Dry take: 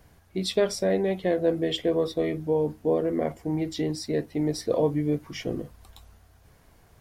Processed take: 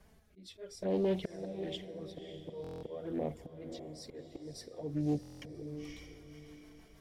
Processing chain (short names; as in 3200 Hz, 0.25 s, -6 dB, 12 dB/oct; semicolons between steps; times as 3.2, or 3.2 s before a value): auto swell 0.618 s; in parallel at -1 dB: limiter -27 dBFS, peak gain reduction 9.5 dB; on the sum: envelope flanger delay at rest 5.5 ms, full sweep at -23.5 dBFS; rotary speaker horn 0.6 Hz, later 6.3 Hz, at 3.76; on a send: diffused feedback echo 0.568 s, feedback 40%, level -10 dB; on the sum: stuck buffer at 2.62/5.21, samples 1024, times 8; Doppler distortion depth 0.3 ms; gain -5 dB